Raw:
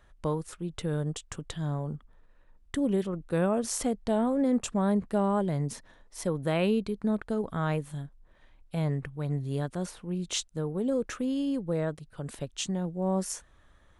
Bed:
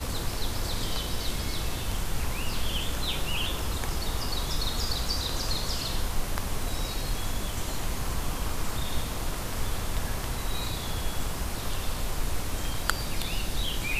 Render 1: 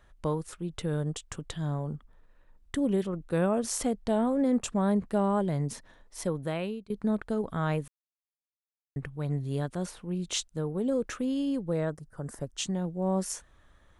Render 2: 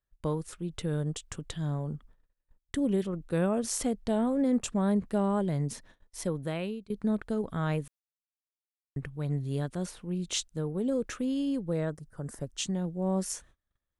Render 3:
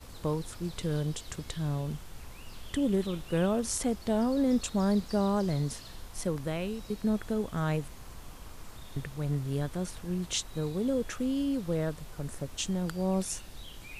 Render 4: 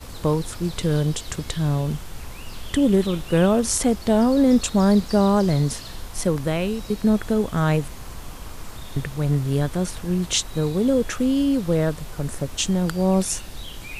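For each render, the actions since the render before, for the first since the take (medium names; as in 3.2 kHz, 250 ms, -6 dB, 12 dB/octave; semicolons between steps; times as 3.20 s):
6.23–6.90 s: fade out, to -22 dB; 7.88–8.96 s: mute; 11.90–12.57 s: high-order bell 3.1 kHz -16 dB 1.1 oct
gate -53 dBFS, range -28 dB; peaking EQ 910 Hz -3.5 dB 1.7 oct
add bed -16 dB
trim +10 dB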